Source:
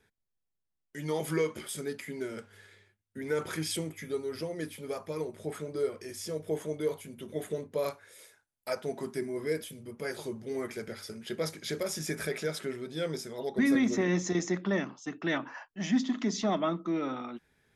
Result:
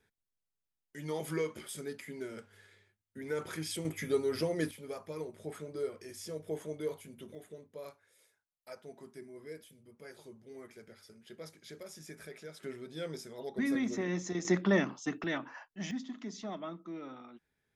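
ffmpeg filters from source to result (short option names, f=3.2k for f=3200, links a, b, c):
-af "asetnsamples=n=441:p=0,asendcmd='3.85 volume volume 3.5dB;4.71 volume volume -5.5dB;7.35 volume volume -14.5dB;12.63 volume volume -6.5dB;14.45 volume volume 2.5dB;15.24 volume volume -4.5dB;15.91 volume volume -12dB',volume=-5dB"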